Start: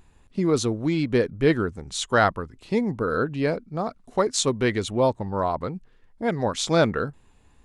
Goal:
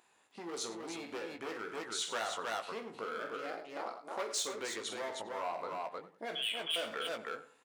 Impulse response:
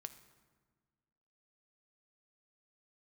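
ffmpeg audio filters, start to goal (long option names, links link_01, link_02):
-filter_complex "[0:a]asettb=1/sr,asplit=3[link_01][link_02][link_03];[link_01]atrim=end=6.354[link_04];[link_02]atrim=start=6.35:end=6.76,asetpts=PTS-STARTPTS,afade=type=in:duration=0.004:curve=qsin,afade=type=out:start_time=0.406:duration=0.004:curve=qsin,lowpass=frequency=3000:width_type=q:width=0.5098,lowpass=frequency=3000:width_type=q:width=0.6013,lowpass=frequency=3000:width_type=q:width=0.9,lowpass=frequency=3000:width_type=q:width=2.563,afreqshift=-3500[link_05];[link_03]atrim=start=6.756[link_06];[link_04][link_05]acrossfade=duration=0.004:curve1=hsin:curve2=qsin[link_07];[link_07][link_06]acrossfade=duration=0.004:curve1=qsin:curve2=hsin,asoftclip=type=hard:threshold=-20.5dB,asplit=3[link_08][link_09][link_10];[link_08]afade=type=out:start_time=3.18:duration=0.02[link_11];[link_09]aeval=exprs='val(0)*sin(2*PI*140*n/s)':channel_layout=same,afade=type=in:start_time=3.18:duration=0.02,afade=type=out:start_time=3.85:duration=0.02[link_12];[link_10]afade=type=in:start_time=3.85:duration=0.02[link_13];[link_11][link_12][link_13]amix=inputs=3:normalize=0,asplit=2[link_14][link_15];[link_15]aecho=0:1:46|104|310:0.335|0.168|0.501[link_16];[link_14][link_16]amix=inputs=2:normalize=0,alimiter=limit=-21.5dB:level=0:latency=1:release=115,acompressor=threshold=-28dB:ratio=6,highpass=570,asplit=2[link_17][link_18];[link_18]adelay=18,volume=-6.5dB[link_19];[link_17][link_19]amix=inputs=2:normalize=0,asplit=2[link_20][link_21];[link_21]adelay=93,lowpass=frequency=2500:poles=1,volume=-13.5dB,asplit=2[link_22][link_23];[link_23]adelay=93,lowpass=frequency=2500:poles=1,volume=0.29,asplit=2[link_24][link_25];[link_25]adelay=93,lowpass=frequency=2500:poles=1,volume=0.29[link_26];[link_22][link_24][link_26]amix=inputs=3:normalize=0[link_27];[link_20][link_27]amix=inputs=2:normalize=0,volume=-4dB"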